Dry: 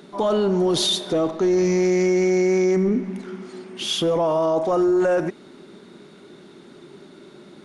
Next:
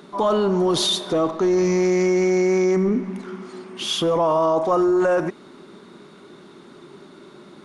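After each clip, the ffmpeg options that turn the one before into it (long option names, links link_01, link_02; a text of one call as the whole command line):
ffmpeg -i in.wav -af "equalizer=frequency=1100:width=2.5:gain=7" out.wav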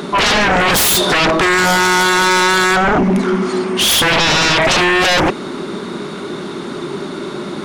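ffmpeg -i in.wav -af "aeval=exprs='0.335*sin(PI/2*6.31*val(0)/0.335)':channel_layout=same" out.wav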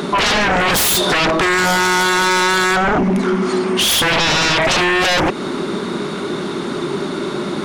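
ffmpeg -i in.wav -af "acompressor=threshold=-16dB:ratio=6,volume=2.5dB" out.wav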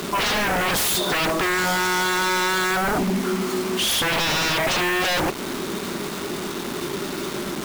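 ffmpeg -i in.wav -af "acrusher=bits=3:mix=0:aa=0.000001,volume=-7.5dB" out.wav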